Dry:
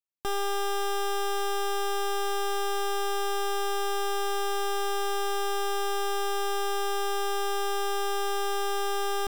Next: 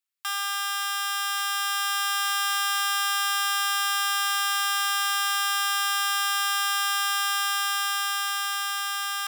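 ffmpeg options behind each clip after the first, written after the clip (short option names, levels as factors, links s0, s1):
-af "highpass=f=1200:w=0.5412,highpass=f=1200:w=1.3066,bandreject=f=6100:w=16,dynaudnorm=f=490:g=7:m=1.5,volume=2.24"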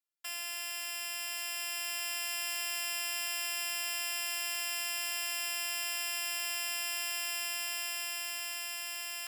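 -af "afftfilt=real='hypot(re,im)*cos(PI*b)':imag='0':win_size=512:overlap=0.75,volume=0.631"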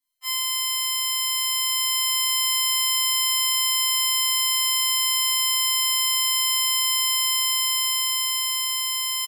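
-filter_complex "[0:a]acontrast=39,asplit=2[s0][s1];[s1]aecho=0:1:30|69|119.7|185.6|271.3:0.631|0.398|0.251|0.158|0.1[s2];[s0][s2]amix=inputs=2:normalize=0,afftfilt=real='re*3.46*eq(mod(b,12),0)':imag='im*3.46*eq(mod(b,12),0)':win_size=2048:overlap=0.75"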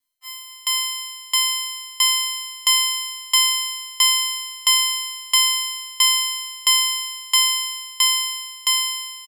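-filter_complex "[0:a]asplit=2[s0][s1];[s1]asoftclip=type=tanh:threshold=0.0944,volume=0.316[s2];[s0][s2]amix=inputs=2:normalize=0,aecho=1:1:238|476|714|952|1190|1428|1666:0.447|0.255|0.145|0.0827|0.0472|0.0269|0.0153,aeval=exprs='val(0)*pow(10,-27*if(lt(mod(1.5*n/s,1),2*abs(1.5)/1000),1-mod(1.5*n/s,1)/(2*abs(1.5)/1000),(mod(1.5*n/s,1)-2*abs(1.5)/1000)/(1-2*abs(1.5)/1000))/20)':c=same,volume=1.41"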